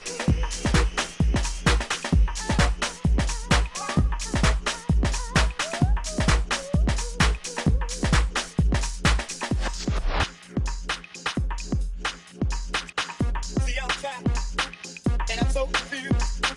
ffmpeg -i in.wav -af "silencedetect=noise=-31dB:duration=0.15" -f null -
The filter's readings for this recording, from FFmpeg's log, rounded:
silence_start: 10.29
silence_end: 10.57 | silence_duration: 0.27
silence_start: 12.13
silence_end: 12.42 | silence_duration: 0.28